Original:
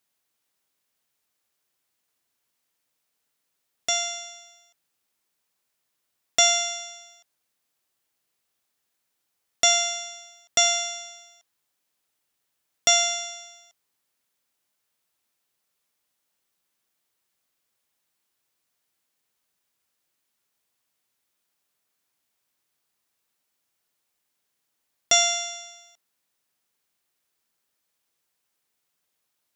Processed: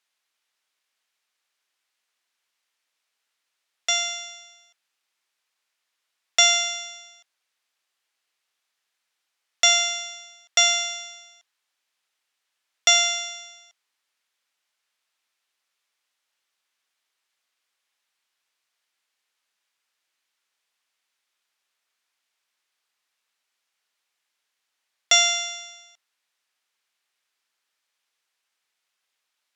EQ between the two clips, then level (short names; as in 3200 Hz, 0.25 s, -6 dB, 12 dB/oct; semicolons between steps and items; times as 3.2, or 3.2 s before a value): band-pass 2400 Hz, Q 0.58; +4.5 dB